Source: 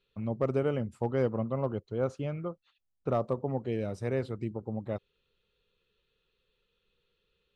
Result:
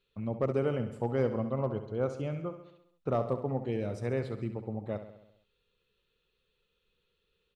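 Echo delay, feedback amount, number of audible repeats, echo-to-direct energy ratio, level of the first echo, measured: 67 ms, 59%, 6, -9.0 dB, -11.0 dB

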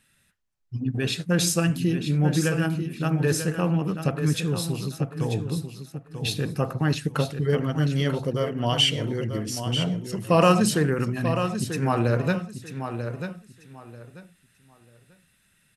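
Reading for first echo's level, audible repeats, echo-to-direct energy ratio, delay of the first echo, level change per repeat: -8.5 dB, 3, -8.5 dB, 940 ms, -13.0 dB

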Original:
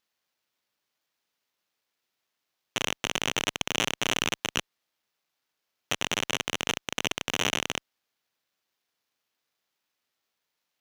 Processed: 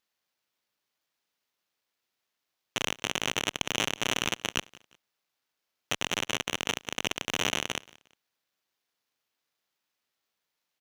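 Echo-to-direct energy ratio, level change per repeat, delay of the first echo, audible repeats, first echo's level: -22.0 dB, -9.5 dB, 178 ms, 2, -22.5 dB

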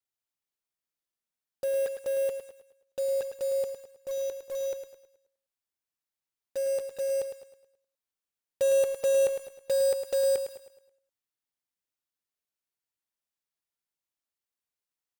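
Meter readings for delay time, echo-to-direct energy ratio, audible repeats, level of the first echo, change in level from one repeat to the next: 107 ms, -8.0 dB, 4, -9.0 dB, -7.5 dB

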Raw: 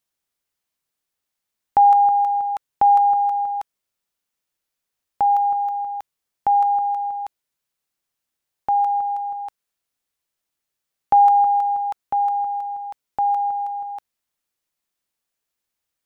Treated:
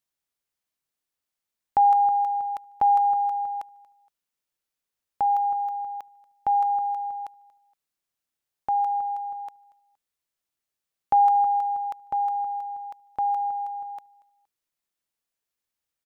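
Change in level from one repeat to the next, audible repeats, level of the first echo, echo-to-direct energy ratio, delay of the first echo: -9.0 dB, 2, -23.0 dB, -22.5 dB, 234 ms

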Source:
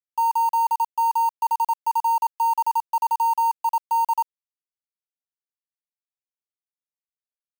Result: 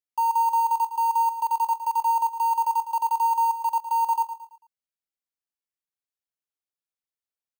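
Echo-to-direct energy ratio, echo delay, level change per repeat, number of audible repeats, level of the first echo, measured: -11.0 dB, 111 ms, -8.0 dB, 3, -11.5 dB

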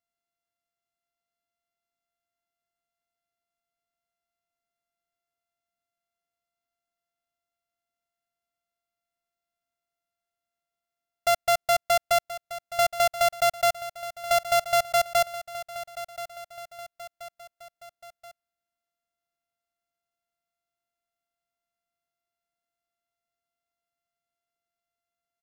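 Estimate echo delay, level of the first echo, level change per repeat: 1029 ms, -14.0 dB, -5.5 dB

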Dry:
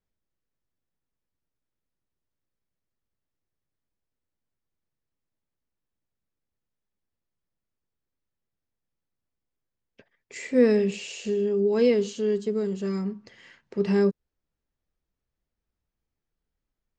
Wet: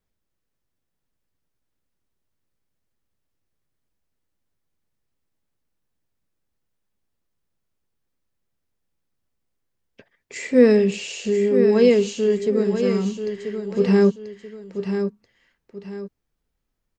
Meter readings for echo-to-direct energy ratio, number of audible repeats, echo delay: -7.5 dB, 2, 985 ms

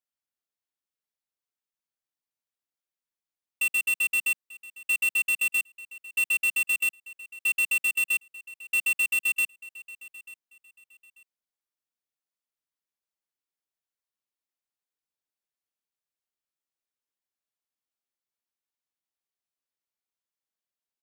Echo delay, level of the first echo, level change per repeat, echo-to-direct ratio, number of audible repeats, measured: 890 ms, -19.5 dB, -11.5 dB, -19.0 dB, 2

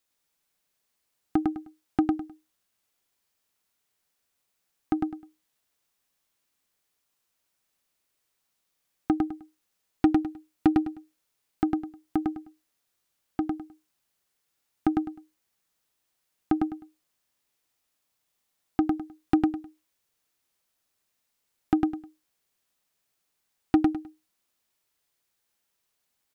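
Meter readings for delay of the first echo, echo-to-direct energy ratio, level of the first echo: 103 ms, -2.5 dB, -3.0 dB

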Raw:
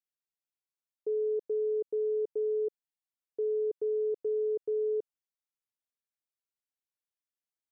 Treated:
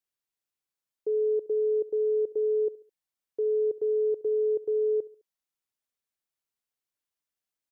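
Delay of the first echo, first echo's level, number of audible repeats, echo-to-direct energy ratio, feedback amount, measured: 70 ms, -20.5 dB, 2, -19.5 dB, 43%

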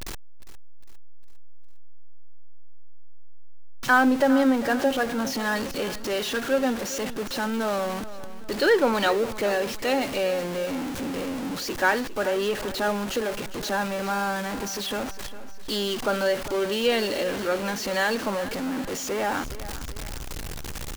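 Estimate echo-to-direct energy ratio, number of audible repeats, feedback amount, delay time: -14.0 dB, 3, 46%, 405 ms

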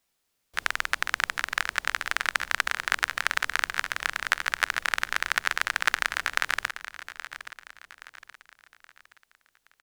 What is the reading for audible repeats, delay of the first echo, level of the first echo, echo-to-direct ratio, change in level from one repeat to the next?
3, 823 ms, -13.0 dB, -12.0 dB, -8.0 dB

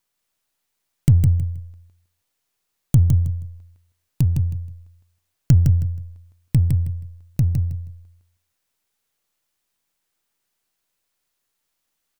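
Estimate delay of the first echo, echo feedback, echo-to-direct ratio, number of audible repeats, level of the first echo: 159 ms, 22%, -5.0 dB, 3, -5.0 dB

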